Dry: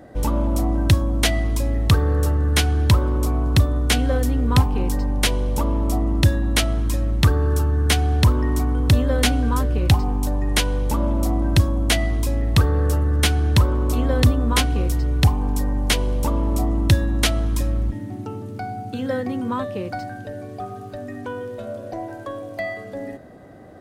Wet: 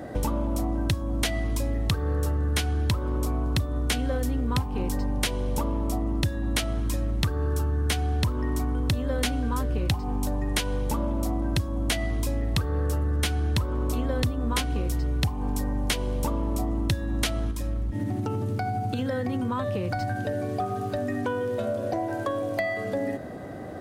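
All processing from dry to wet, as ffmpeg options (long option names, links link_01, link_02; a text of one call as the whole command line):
ffmpeg -i in.wav -filter_complex "[0:a]asettb=1/sr,asplit=3[link_01][link_02][link_03];[link_01]atrim=end=17.514[link_04];[link_02]atrim=start=17.51:end=20.17,asetpts=PTS-STARTPTS,afade=type=in:duration=0.004:curve=qsin,afade=type=out:start_time=2.656:duration=0.004:curve=qsin,asubboost=boost=4.5:cutoff=130,acompressor=threshold=-27dB:ratio=4:attack=3.2:release=140:knee=1:detection=peak[link_05];[link_03]atrim=start=20.166[link_06];[link_04][link_05]acrossfade=duration=0.004:curve1=hsin:curve2=qsin[link_07];[link_07][link_06]acrossfade=duration=0.004:curve1=qsin:curve2=hsin,highpass=52,acompressor=threshold=-31dB:ratio=5,volume=6.5dB" out.wav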